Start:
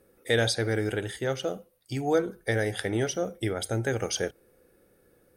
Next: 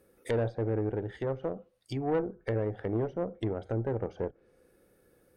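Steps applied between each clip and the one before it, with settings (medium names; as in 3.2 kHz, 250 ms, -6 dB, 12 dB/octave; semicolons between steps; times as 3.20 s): low-pass that closes with the level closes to 730 Hz, closed at -26.5 dBFS; valve stage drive 22 dB, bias 0.5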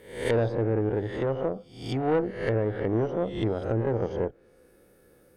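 reverse spectral sustain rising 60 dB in 0.57 s; trim +4 dB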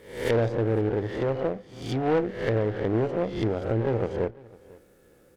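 delay 502 ms -22.5 dB; delay time shaken by noise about 1.2 kHz, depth 0.03 ms; trim +1 dB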